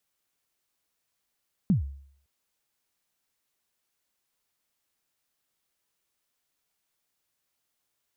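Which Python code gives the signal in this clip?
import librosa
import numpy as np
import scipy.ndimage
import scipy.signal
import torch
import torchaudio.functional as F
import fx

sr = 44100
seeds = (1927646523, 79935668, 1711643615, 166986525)

y = fx.drum_kick(sr, seeds[0], length_s=0.56, level_db=-16, start_hz=220.0, end_hz=69.0, sweep_ms=124.0, decay_s=0.6, click=False)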